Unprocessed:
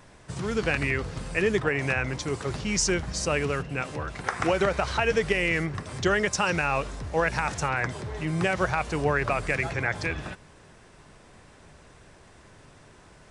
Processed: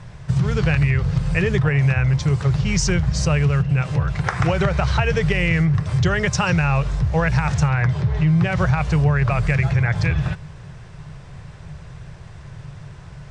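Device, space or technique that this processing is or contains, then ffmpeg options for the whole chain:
jukebox: -filter_complex "[0:a]lowpass=6.5k,lowshelf=f=190:t=q:w=3:g=9,acompressor=threshold=-22dB:ratio=3,asettb=1/sr,asplit=3[a][b][c];[a]atrim=end=7.754[d];[b]atrim=start=7.75:end=8.52,asetpts=PTS-STARTPTS,afade=t=in:d=0.004:c=qsin,afade=t=out:st=0.766:d=0.004:c=qsin,lowpass=5.8k[e];[c]atrim=start=8.516[f];[d][e]acrossfade=d=0.004:c1=hsin:c2=qsin[g];[g][f]acrossfade=d=0.004:c1=qsin:c2=hsin,volume=6.5dB"

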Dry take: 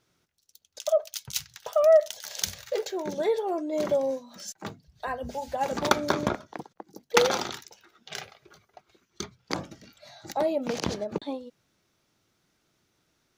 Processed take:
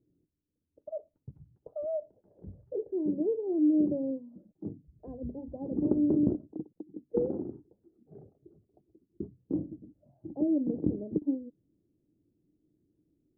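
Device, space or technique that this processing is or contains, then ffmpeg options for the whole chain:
under water: -af "lowpass=f=400:w=0.5412,lowpass=f=400:w=1.3066,equalizer=f=300:t=o:w=0.26:g=11"

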